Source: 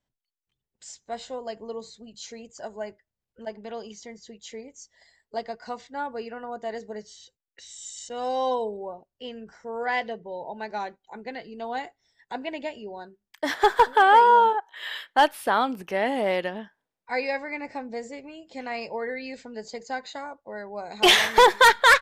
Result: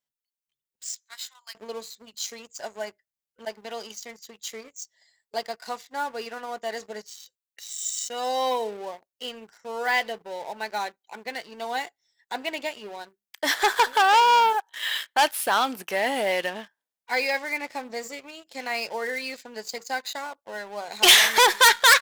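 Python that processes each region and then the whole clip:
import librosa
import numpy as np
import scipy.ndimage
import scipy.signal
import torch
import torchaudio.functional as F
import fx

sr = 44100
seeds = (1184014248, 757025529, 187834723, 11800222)

y = fx.chain(x, sr, fx.steep_highpass(hz=1100.0, slope=36),
    fx.notch(hz=2800.0, q=12.0), at=(0.97, 1.55))
y = fx.leveller(y, sr, passes=2)
y = fx.tilt_eq(y, sr, slope=3.0)
y = y * librosa.db_to_amplitude(-5.0)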